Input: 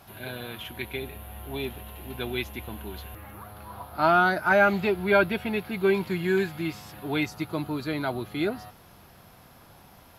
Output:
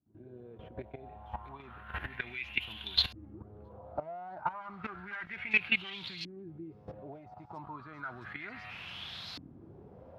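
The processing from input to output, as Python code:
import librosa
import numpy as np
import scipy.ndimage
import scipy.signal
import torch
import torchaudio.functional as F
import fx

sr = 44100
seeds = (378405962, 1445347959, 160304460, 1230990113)

p1 = np.minimum(x, 2.0 * 10.0 ** (-23.5 / 20.0) - x)
p2 = fx.recorder_agc(p1, sr, target_db=-11.0, rise_db_per_s=65.0, max_gain_db=30)
p3 = scipy.signal.sosfilt(scipy.signal.butter(2, 72.0, 'highpass', fs=sr, output='sos'), p2)
p4 = fx.tone_stack(p3, sr, knobs='5-5-5')
p5 = np.sign(p4) * np.maximum(np.abs(p4) - 10.0 ** (-44.0 / 20.0), 0.0)
p6 = p4 + (p5 * 10.0 ** (-9.5 / 20.0))
p7 = fx.level_steps(p6, sr, step_db=15)
p8 = p7 + fx.echo_wet_highpass(p7, sr, ms=667, feedback_pct=34, hz=5100.0, wet_db=-4, dry=0)
p9 = fx.filter_lfo_lowpass(p8, sr, shape='saw_up', hz=0.32, low_hz=280.0, high_hz=4400.0, q=6.0)
y = p9 * 10.0 ** (-3.0 / 20.0)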